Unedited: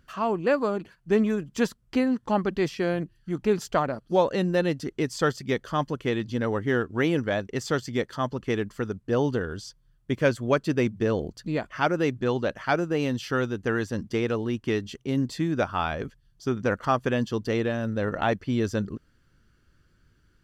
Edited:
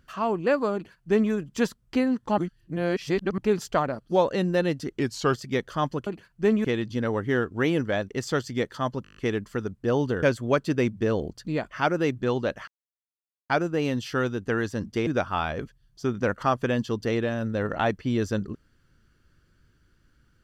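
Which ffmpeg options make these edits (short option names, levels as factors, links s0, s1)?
-filter_complex "[0:a]asplit=17[s0][s1][s2][s3][s4][s5][s6][s7][s8][s9][s10][s11][s12][s13][s14][s15][s16];[s0]atrim=end=2.382[s17];[s1]atrim=start=2.378:end=3.382,asetpts=PTS-STARTPTS,areverse[s18];[s2]atrim=start=3.378:end=4.994[s19];[s3]atrim=start=4.99:end=5.31,asetpts=PTS-STARTPTS,asetrate=39690,aresample=44100[s20];[s4]atrim=start=5.306:end=6.032[s21];[s5]atrim=start=0.738:end=1.322[s22];[s6]atrim=start=6.028:end=8.432[s23];[s7]atrim=start=8.408:end=8.432[s24];[s8]atrim=start=8.408:end=8.432[s25];[s9]atrim=start=8.408:end=8.432[s26];[s10]atrim=start=8.408:end=8.432[s27];[s11]atrim=start=8.408:end=8.432[s28];[s12]atrim=start=8.408:end=8.432[s29];[s13]atrim=start=8.408:end=9.472[s30];[s14]atrim=start=10.218:end=12.67,asetpts=PTS-STARTPTS,afade=t=out:st=2.448:d=0.004:c=hsin,apad=pad_dur=0.82[s31];[s15]atrim=start=12.67:end=14.242,asetpts=PTS-STARTPTS,afade=t=in:d=0.004:c=hsin[s32];[s16]atrim=start=15.488[s33];[s17][s18]acrossfade=d=0.004:c1=hsin:c2=hsin[s34];[s34][s19]acrossfade=d=0.004:c1=hsin:c2=hsin[s35];[s35][s20]acrossfade=d=0.004:c1=hsin:c2=hsin[s36];[s36][s21]acrossfade=d=0.004:c1=hsin:c2=hsin[s37];[s37][s22]acrossfade=d=0.004:c1=hsin:c2=hsin[s38];[s38][s23]acrossfade=d=0.004:c1=hsin:c2=hsin[s39];[s39][s24]acrossfade=d=0.004:c1=hsin:c2=hsin[s40];[s40][s25]acrossfade=d=0.004:c1=hsin:c2=hsin[s41];[s41][s26]acrossfade=d=0.004:c1=hsin:c2=hsin[s42];[s42][s27]acrossfade=d=0.004:c1=hsin:c2=hsin[s43];[s43][s28]acrossfade=d=0.004:c1=hsin:c2=hsin[s44];[s44][s29]acrossfade=d=0.004:c1=hsin:c2=hsin[s45];[s45][s30]acrossfade=d=0.004:c1=hsin:c2=hsin[s46];[s31][s32]concat=n=2:v=0:a=1[s47];[s46][s47]acrossfade=d=0.004:c1=hsin:c2=hsin[s48];[s48][s33]acrossfade=d=0.004:c1=hsin:c2=hsin"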